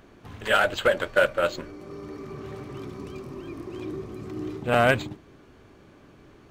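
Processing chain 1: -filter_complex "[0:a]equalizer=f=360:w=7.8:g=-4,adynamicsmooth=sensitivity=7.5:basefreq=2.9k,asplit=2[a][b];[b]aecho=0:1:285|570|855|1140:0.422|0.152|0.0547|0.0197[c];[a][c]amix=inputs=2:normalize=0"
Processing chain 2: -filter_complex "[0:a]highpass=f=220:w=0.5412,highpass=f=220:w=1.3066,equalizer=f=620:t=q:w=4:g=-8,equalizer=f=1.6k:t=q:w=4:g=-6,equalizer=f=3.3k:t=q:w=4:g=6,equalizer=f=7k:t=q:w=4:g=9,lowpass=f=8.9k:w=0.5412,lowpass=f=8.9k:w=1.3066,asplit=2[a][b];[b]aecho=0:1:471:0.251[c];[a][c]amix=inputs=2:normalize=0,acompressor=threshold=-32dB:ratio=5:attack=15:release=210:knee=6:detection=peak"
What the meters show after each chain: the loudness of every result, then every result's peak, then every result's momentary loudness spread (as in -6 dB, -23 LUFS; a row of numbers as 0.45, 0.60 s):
-25.0, -37.0 LUFS; -8.0, -17.5 dBFS; 17, 18 LU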